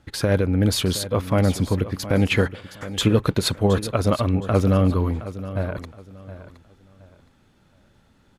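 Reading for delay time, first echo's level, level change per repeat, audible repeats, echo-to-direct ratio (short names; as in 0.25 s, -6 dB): 0.718 s, -14.0 dB, -11.5 dB, 2, -13.5 dB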